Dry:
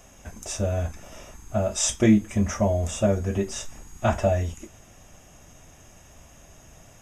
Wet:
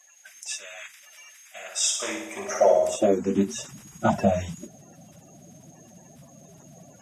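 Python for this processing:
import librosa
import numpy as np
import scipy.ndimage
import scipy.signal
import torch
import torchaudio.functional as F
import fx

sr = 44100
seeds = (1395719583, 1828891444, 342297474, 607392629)

y = fx.spec_quant(x, sr, step_db=30)
y = fx.room_flutter(y, sr, wall_m=10.1, rt60_s=0.74, at=(1.55, 2.95), fade=0.02)
y = fx.filter_sweep_highpass(y, sr, from_hz=2000.0, to_hz=160.0, start_s=1.57, end_s=3.59, q=2.2)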